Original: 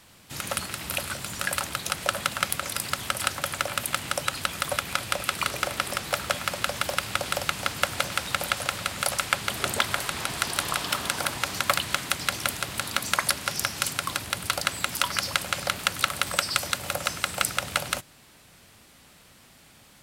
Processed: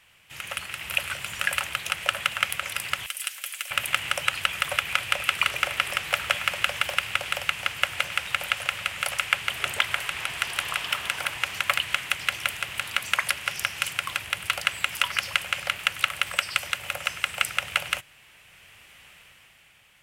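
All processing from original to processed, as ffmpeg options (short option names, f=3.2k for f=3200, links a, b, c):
-filter_complex "[0:a]asettb=1/sr,asplit=3[a][b][c];[a]atrim=end=3.064[d];[b]atrim=start=3.06:end=3.71,asetpts=PTS-STARTPTS,afade=t=in:d=0.004:c=qsin,afade=t=out:st=0.646:d=0.004:c=qsin,aderivative,aecho=1:1:7.4:0.44,atrim=end_sample=28665[e];[c]atrim=start=3.706[f];[d][e]acrossfade=d=0.004:c1=hsin:c2=qsin[g];[g][f]acrossfade=d=0.004:c1=qsin:c2=hsin,equalizer=f=250:t=o:w=1:g=-10,equalizer=f=2k:t=o:w=1:g=4,equalizer=f=4k:t=o:w=1:g=-10,dynaudnorm=f=110:g=17:m=11.5dB,equalizer=f=2.9k:w=1.3:g=14.5,volume=-8.5dB"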